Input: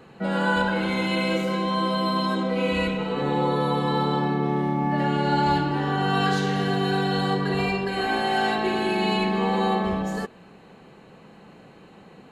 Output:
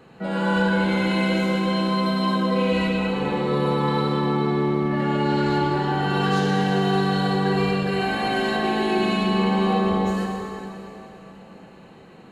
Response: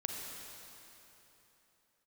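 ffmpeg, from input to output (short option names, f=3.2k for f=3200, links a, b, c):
-filter_complex "[0:a]asoftclip=type=tanh:threshold=-14.5dB[a];[1:a]atrim=start_sample=2205[b];[a][b]afir=irnorm=-1:irlink=0"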